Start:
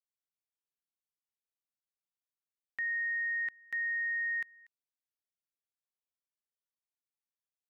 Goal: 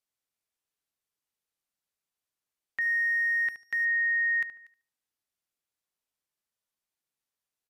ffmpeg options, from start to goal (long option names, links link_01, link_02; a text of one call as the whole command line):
ffmpeg -i in.wav -filter_complex "[0:a]asplit=2[link_01][link_02];[link_02]adelay=73,lowpass=frequency=1800:poles=1,volume=-11dB,asplit=2[link_03][link_04];[link_04]adelay=73,lowpass=frequency=1800:poles=1,volume=0.33,asplit=2[link_05][link_06];[link_06]adelay=73,lowpass=frequency=1800:poles=1,volume=0.33,asplit=2[link_07][link_08];[link_08]adelay=73,lowpass=frequency=1800:poles=1,volume=0.33[link_09];[link_01][link_03][link_05][link_07][link_09]amix=inputs=5:normalize=0,asettb=1/sr,asplit=3[link_10][link_11][link_12];[link_10]atrim=end=2.814[link_13];[link_11]atrim=start=2.81:end=3.85,asetpts=PTS-STARTPTS,afade=type=in:duration=0.004:curve=qsin,afade=type=out:start_time=1.036:duration=0.004:curve=qsin,aeval=exprs='sgn(val(0))*max(abs(val(0))-0.00119,0)':channel_layout=same[link_14];[link_12]atrim=start=3.846[link_15];[link_13][link_14]acrossfade=duration=0.004:curve1=hsin:curve2=qsin[link_16];[link_16][link_15]acrossfade=duration=0.004:curve1=qsin:curve2=hsin,volume=6.5dB" -ar 32000 -c:a libmp3lame -b:a 96k out.mp3